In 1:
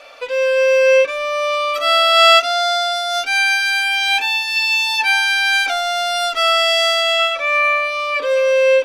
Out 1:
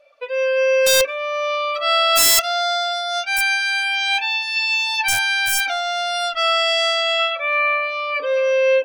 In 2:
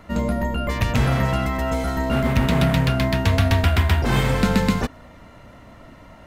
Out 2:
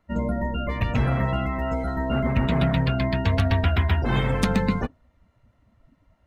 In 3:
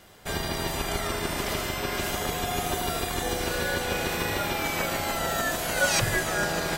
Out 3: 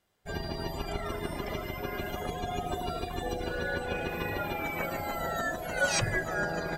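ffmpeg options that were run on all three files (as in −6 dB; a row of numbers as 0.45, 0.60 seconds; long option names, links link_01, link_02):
-af "aeval=exprs='(mod(2.11*val(0)+1,2)-1)/2.11':channel_layout=same,afftdn=noise_reduction=20:noise_floor=-29,volume=-3dB"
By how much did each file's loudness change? −3.0, −3.5, −5.5 LU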